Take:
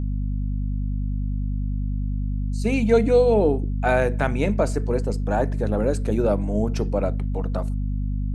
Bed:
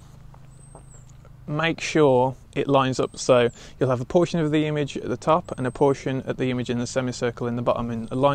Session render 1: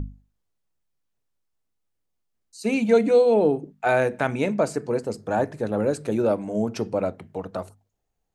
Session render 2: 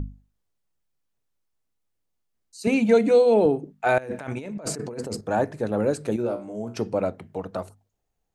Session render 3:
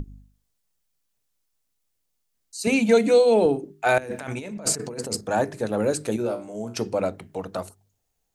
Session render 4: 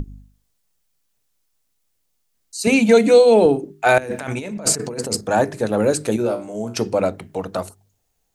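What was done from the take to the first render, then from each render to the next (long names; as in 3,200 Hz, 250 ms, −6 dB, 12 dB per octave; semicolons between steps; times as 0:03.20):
mains-hum notches 50/100/150/200/250 Hz
0:02.67–0:03.46: multiband upward and downward compressor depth 40%; 0:03.98–0:05.21: compressor whose output falls as the input rises −33 dBFS; 0:06.16–0:06.77: tuned comb filter 60 Hz, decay 0.35 s, mix 80%
high-shelf EQ 3,000 Hz +10 dB; mains-hum notches 50/100/150/200/250/300/350/400 Hz
level +5.5 dB; brickwall limiter −3 dBFS, peak gain reduction 1.5 dB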